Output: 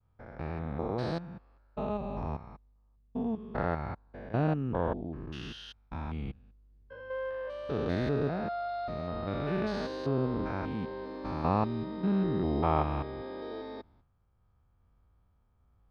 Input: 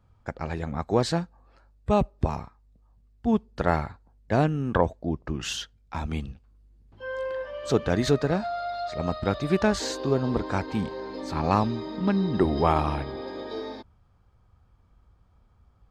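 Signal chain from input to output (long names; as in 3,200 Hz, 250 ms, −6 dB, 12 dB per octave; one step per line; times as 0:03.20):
spectrum averaged block by block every 200 ms
moving average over 6 samples
downward expander −57 dBFS
level −3.5 dB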